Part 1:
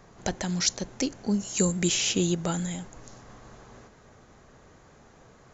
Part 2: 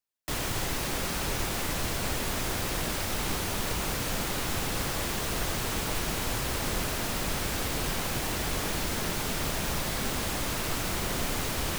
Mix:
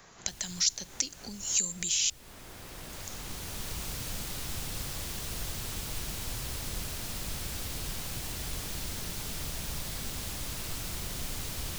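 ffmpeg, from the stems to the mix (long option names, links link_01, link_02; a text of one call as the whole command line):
ffmpeg -i stem1.wav -i stem2.wav -filter_complex "[0:a]acompressor=threshold=-30dB:ratio=6,tiltshelf=frequency=1100:gain=-7.5,volume=0.5dB,asplit=3[link_01][link_02][link_03];[link_01]atrim=end=2.1,asetpts=PTS-STARTPTS,afade=type=out:start_time=2.096:duration=0.004:curve=hsin[link_04];[link_02]atrim=start=2.1:end=2.93,asetpts=PTS-STARTPTS,volume=0[link_05];[link_03]atrim=start=2.93,asetpts=PTS-STARTPTS,afade=type=in:duration=0.004:curve=hsin[link_06];[link_04][link_05][link_06]concat=n=3:v=0:a=1,asplit=2[link_07][link_08];[1:a]volume=-4dB[link_09];[link_08]apad=whole_len=519599[link_10];[link_09][link_10]sidechaincompress=threshold=-37dB:ratio=20:attack=9.9:release=1340[link_11];[link_07][link_11]amix=inputs=2:normalize=0,acrossover=split=160|3000[link_12][link_13][link_14];[link_13]acompressor=threshold=-46dB:ratio=4[link_15];[link_12][link_15][link_14]amix=inputs=3:normalize=0" out.wav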